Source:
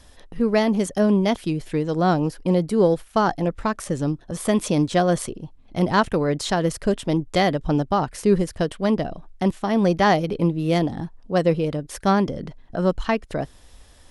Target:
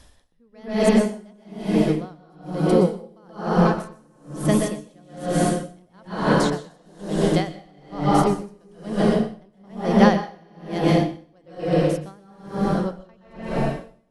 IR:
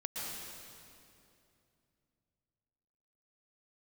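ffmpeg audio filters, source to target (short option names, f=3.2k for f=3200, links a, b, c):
-filter_complex "[1:a]atrim=start_sample=2205,asetrate=41895,aresample=44100[a];[0:a][a]afir=irnorm=-1:irlink=0,aeval=exprs='val(0)*pow(10,-37*(0.5-0.5*cos(2*PI*1.1*n/s))/20)':c=same,volume=3dB"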